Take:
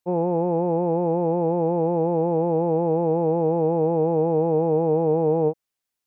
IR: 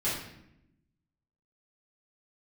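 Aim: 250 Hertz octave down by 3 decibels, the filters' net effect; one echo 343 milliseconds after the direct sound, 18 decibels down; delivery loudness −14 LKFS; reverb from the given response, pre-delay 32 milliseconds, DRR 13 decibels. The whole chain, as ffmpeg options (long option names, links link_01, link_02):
-filter_complex "[0:a]equalizer=frequency=250:width_type=o:gain=-5.5,aecho=1:1:343:0.126,asplit=2[link_01][link_02];[1:a]atrim=start_sample=2205,adelay=32[link_03];[link_02][link_03]afir=irnorm=-1:irlink=0,volume=-21dB[link_04];[link_01][link_04]amix=inputs=2:normalize=0,volume=9dB"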